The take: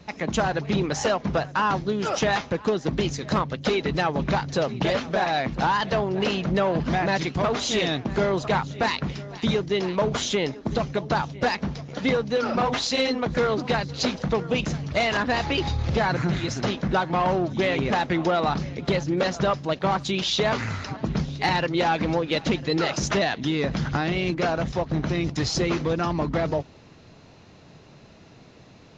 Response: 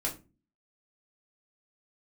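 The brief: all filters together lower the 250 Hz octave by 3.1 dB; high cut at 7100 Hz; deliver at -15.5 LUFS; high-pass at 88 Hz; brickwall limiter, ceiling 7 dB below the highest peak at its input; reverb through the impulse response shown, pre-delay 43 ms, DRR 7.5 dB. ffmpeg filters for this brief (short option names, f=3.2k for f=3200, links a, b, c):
-filter_complex "[0:a]highpass=88,lowpass=7.1k,equalizer=f=250:t=o:g=-4.5,alimiter=limit=-17.5dB:level=0:latency=1,asplit=2[a][b];[1:a]atrim=start_sample=2205,adelay=43[c];[b][c]afir=irnorm=-1:irlink=0,volume=-11.5dB[d];[a][d]amix=inputs=2:normalize=0,volume=11.5dB"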